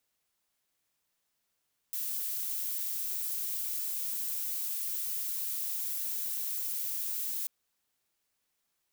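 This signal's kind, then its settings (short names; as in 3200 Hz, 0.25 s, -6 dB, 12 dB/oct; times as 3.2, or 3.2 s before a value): noise violet, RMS -34.5 dBFS 5.54 s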